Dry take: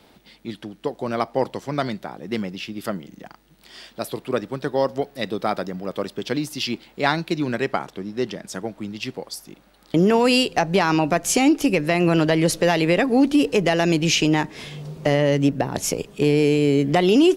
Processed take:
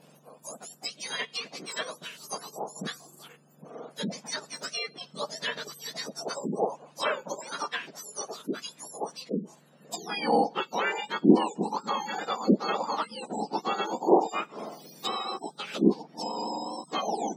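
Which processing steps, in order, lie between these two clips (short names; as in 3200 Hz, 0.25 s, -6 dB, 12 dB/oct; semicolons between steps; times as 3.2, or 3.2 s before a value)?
spectrum mirrored in octaves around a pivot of 1500 Hz; spectral gate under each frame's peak -30 dB strong; treble ducked by the level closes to 1900 Hz, closed at -22.5 dBFS; gain -2 dB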